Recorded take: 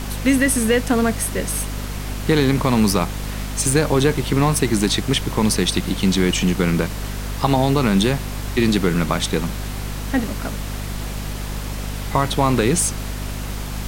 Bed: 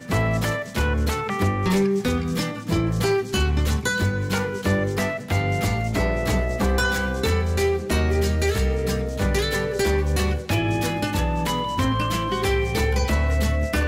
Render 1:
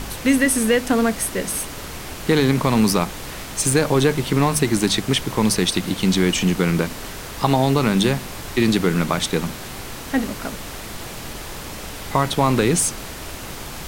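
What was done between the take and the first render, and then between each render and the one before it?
hum removal 50 Hz, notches 5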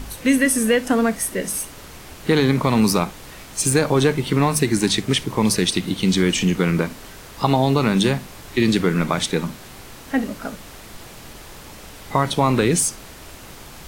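noise reduction from a noise print 7 dB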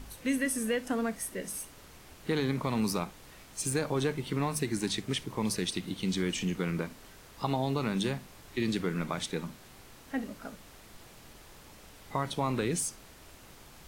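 level −13 dB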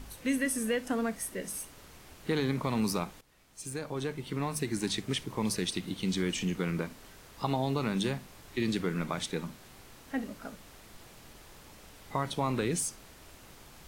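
0:03.21–0:04.92: fade in, from −16 dB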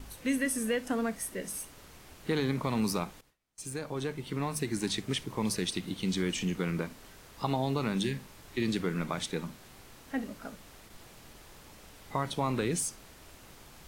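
0:08.05–0:08.35: healed spectral selection 430–1,600 Hz
noise gate with hold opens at −43 dBFS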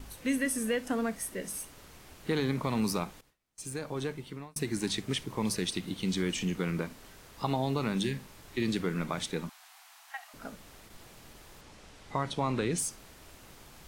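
0:04.07–0:04.56: fade out linear
0:09.49–0:10.34: Butterworth high-pass 680 Hz 96 dB per octave
0:11.61–0:12.78: low-pass filter 8,000 Hz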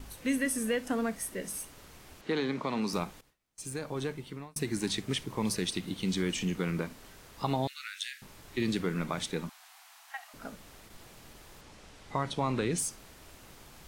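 0:02.21–0:02.93: three-way crossover with the lows and the highs turned down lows −17 dB, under 180 Hz, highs −17 dB, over 6,900 Hz
0:07.67–0:08.22: Butterworth high-pass 1,400 Hz 72 dB per octave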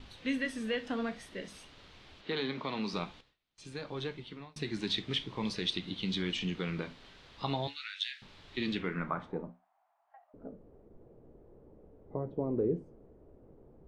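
low-pass filter sweep 3,700 Hz → 450 Hz, 0:08.66–0:09.61
flanger 0.49 Hz, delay 8.9 ms, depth 8.3 ms, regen −64%

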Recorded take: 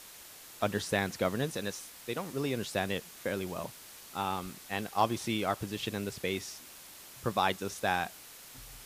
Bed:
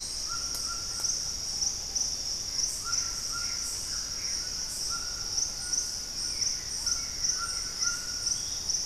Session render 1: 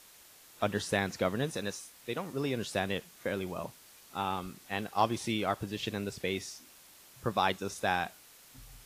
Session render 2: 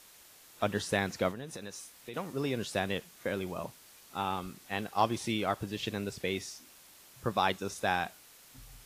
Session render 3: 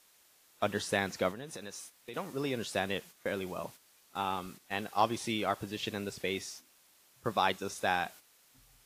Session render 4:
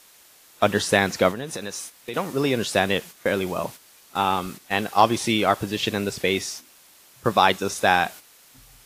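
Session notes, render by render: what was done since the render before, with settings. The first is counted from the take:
noise reduction from a noise print 6 dB
0:01.31–0:02.14: downward compressor 4 to 1, threshold −39 dBFS
low-shelf EQ 170 Hz −6.5 dB; noise gate −49 dBFS, range −8 dB
level +12 dB; brickwall limiter −3 dBFS, peak gain reduction 1.5 dB

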